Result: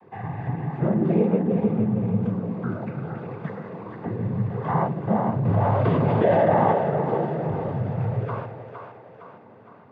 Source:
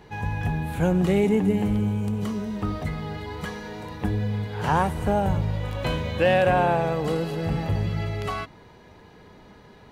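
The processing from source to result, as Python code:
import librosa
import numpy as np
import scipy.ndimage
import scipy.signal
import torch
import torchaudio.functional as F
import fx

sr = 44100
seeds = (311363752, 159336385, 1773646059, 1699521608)

y = scipy.signal.sosfilt(scipy.signal.butter(2, 1100.0, 'lowpass', fs=sr, output='sos'), x)
y = fx.noise_vocoder(y, sr, seeds[0], bands=16)
y = fx.echo_split(y, sr, split_hz=460.0, low_ms=146, high_ms=461, feedback_pct=52, wet_db=-6.5)
y = fx.env_flatten(y, sr, amount_pct=70, at=(5.45, 6.73))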